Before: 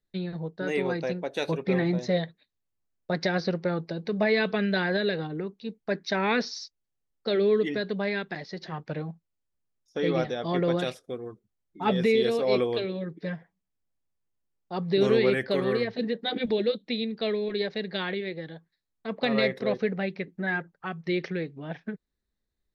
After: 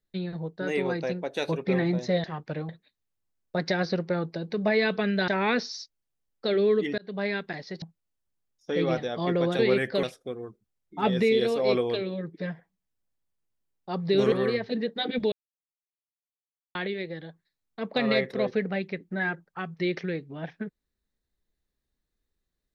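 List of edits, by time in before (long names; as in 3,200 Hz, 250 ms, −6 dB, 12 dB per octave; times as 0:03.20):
0:04.83–0:06.10: remove
0:07.80–0:08.06: fade in
0:08.64–0:09.09: move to 0:02.24
0:15.15–0:15.59: move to 0:10.86
0:16.59–0:18.02: silence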